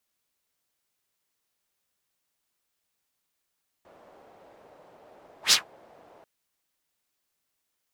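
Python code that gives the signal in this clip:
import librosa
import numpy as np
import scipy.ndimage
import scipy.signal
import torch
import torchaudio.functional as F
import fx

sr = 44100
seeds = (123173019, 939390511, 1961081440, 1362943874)

y = fx.whoosh(sr, seeds[0], length_s=2.39, peak_s=1.67, rise_s=0.11, fall_s=0.14, ends_hz=620.0, peak_hz=5200.0, q=2.0, swell_db=37.5)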